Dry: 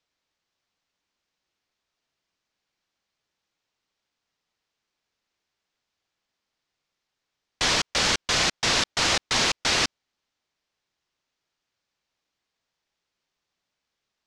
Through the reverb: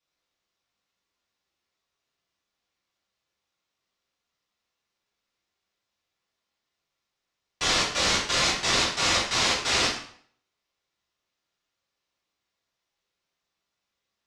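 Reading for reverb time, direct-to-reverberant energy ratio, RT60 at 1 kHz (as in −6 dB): 0.55 s, −8.0 dB, 0.60 s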